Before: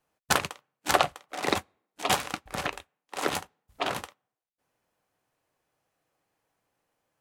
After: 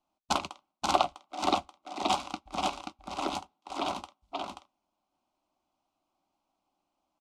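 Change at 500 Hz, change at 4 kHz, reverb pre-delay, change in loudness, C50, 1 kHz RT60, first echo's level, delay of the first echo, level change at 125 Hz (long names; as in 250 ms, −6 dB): −3.0 dB, −2.5 dB, no reverb audible, −3.5 dB, no reverb audible, no reverb audible, −3.5 dB, 532 ms, −7.0 dB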